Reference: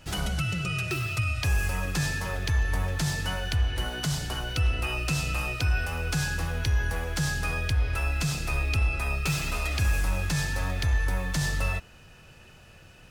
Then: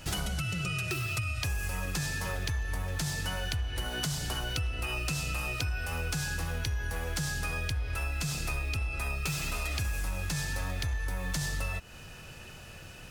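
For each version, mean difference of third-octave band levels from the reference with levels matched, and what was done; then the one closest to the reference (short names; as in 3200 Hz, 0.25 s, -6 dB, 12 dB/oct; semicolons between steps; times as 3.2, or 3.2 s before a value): 3.0 dB: high shelf 5200 Hz +5.5 dB; compressor, threshold -34 dBFS, peak gain reduction 13.5 dB; gain +4 dB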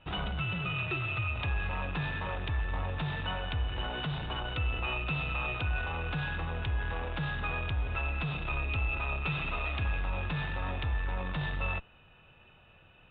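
9.0 dB: in parallel at -7 dB: Schmitt trigger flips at -38 dBFS; on the sum: rippled Chebyshev low-pass 3800 Hz, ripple 6 dB; gain -3 dB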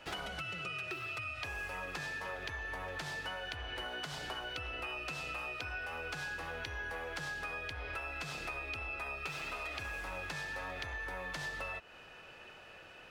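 6.0 dB: three-band isolator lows -18 dB, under 320 Hz, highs -14 dB, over 3800 Hz; compressor, threshold -41 dBFS, peak gain reduction 11.5 dB; gain +2.5 dB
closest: first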